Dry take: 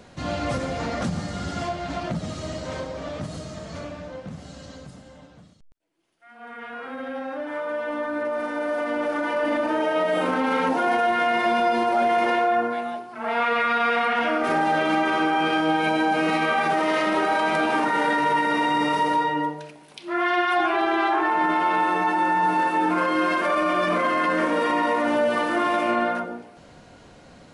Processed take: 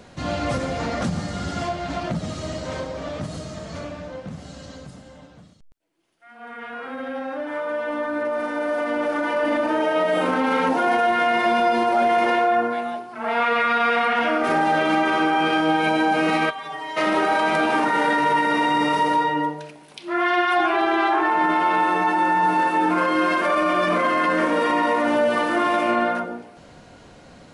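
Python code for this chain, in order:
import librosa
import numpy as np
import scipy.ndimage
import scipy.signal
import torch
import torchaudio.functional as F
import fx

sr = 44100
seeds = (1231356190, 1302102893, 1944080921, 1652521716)

y = fx.stiff_resonator(x, sr, f0_hz=140.0, decay_s=0.37, stiffness=0.008, at=(16.49, 16.96), fade=0.02)
y = y * librosa.db_to_amplitude(2.0)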